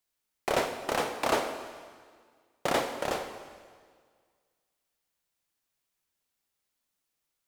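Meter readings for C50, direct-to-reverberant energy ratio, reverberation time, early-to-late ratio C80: 8.0 dB, 6.5 dB, 1.8 s, 9.0 dB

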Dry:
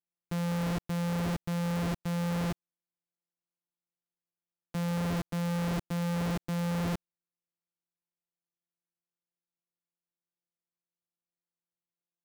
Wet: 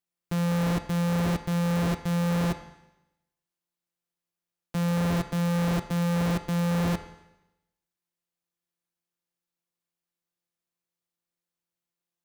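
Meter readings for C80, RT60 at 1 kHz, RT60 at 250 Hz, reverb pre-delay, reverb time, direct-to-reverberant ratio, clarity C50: 15.0 dB, 0.90 s, 0.95 s, 10 ms, 0.95 s, 9.5 dB, 13.0 dB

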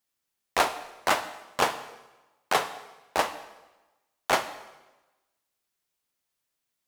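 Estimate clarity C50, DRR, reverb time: 12.0 dB, 10.0 dB, 1.1 s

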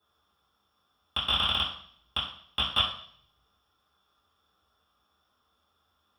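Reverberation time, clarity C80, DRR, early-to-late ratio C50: 0.60 s, 9.0 dB, -10.5 dB, 5.0 dB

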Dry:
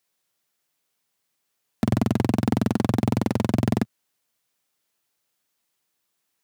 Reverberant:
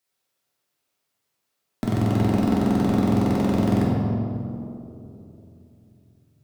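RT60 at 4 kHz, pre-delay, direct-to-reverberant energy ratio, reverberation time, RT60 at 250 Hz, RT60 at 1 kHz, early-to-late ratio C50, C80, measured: 1.4 s, 3 ms, -5.5 dB, 2.9 s, 3.5 s, 2.5 s, -1.5 dB, 0.5 dB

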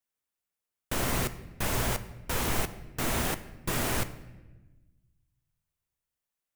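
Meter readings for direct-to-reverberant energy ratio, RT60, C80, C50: 11.0 dB, 1.1 s, 16.0 dB, 14.5 dB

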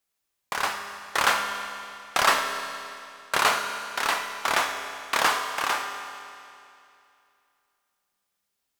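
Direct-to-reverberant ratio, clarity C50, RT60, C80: 4.5 dB, 6.0 dB, 2.6 s, 7.0 dB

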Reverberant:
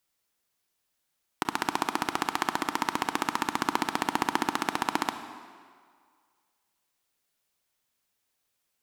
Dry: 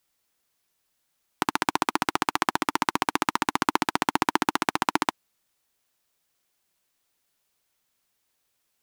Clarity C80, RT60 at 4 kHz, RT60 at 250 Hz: 11.0 dB, 1.5 s, 1.7 s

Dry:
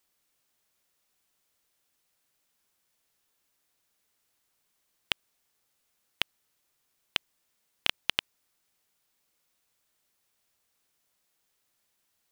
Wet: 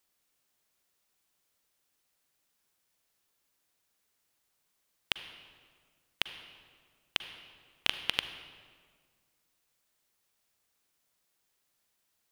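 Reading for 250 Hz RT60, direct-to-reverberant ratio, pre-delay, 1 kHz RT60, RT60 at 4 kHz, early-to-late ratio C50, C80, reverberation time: 2.1 s, 10.0 dB, 39 ms, 1.7 s, 1.2 s, 10.5 dB, 11.5 dB, 1.8 s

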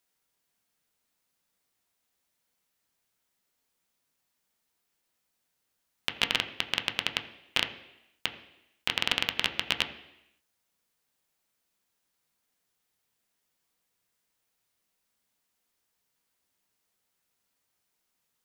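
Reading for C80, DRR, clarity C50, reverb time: 13.5 dB, 5.5 dB, 12.0 dB, 0.85 s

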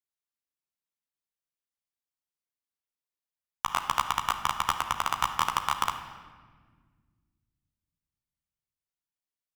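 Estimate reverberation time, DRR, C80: 1.6 s, 3.0 dB, 9.5 dB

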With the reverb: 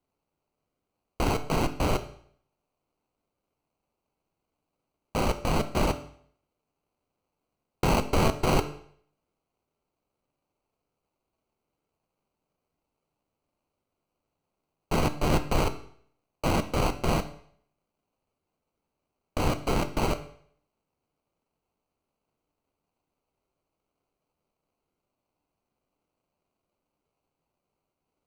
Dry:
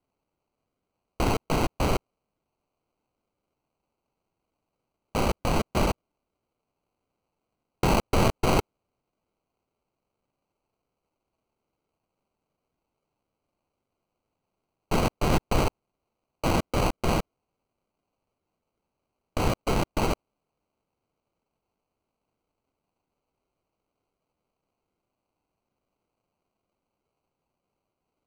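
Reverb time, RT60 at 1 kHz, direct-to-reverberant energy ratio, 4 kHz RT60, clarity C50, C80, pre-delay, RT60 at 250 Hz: 0.60 s, 0.60 s, 9.0 dB, 0.55 s, 13.5 dB, 16.5 dB, 9 ms, 0.55 s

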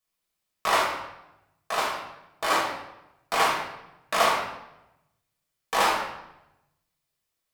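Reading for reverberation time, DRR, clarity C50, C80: 0.90 s, -4.5 dB, 2.5 dB, 5.5 dB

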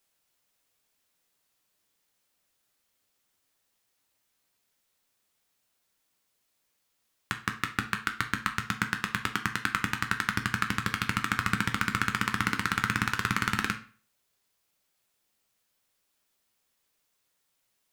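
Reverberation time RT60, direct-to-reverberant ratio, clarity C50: 0.40 s, 5.0 dB, 12.0 dB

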